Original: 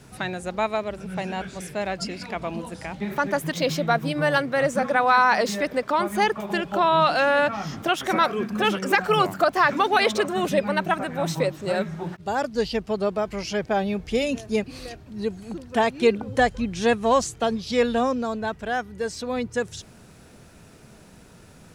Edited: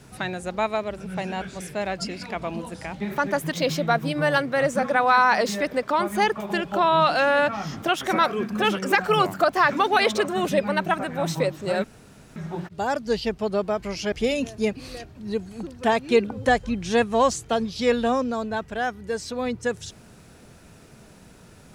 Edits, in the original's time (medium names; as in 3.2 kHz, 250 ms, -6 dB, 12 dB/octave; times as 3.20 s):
11.84 s: insert room tone 0.52 s
13.60–14.03 s: delete